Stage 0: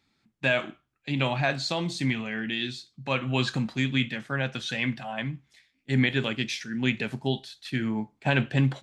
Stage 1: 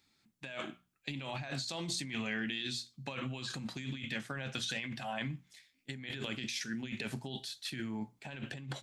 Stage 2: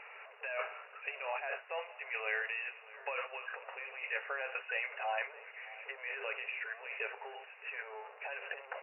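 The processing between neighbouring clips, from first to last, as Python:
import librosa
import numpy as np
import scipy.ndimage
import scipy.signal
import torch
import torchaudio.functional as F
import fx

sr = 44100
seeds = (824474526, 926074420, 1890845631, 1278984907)

y1 = fx.high_shelf(x, sr, hz=4600.0, db=11.5)
y1 = fx.over_compress(y1, sr, threshold_db=-31.0, ratio=-1.0)
y1 = fx.hum_notches(y1, sr, base_hz=60, count=4)
y1 = y1 * 10.0 ** (-8.5 / 20.0)
y2 = y1 + 0.5 * 10.0 ** (-41.5 / 20.0) * np.sign(y1)
y2 = fx.brickwall_bandpass(y2, sr, low_hz=410.0, high_hz=2900.0)
y2 = y2 + 10.0 ** (-19.5 / 20.0) * np.pad(y2, (int(621 * sr / 1000.0), 0))[:len(y2)]
y2 = y2 * 10.0 ** (2.0 / 20.0)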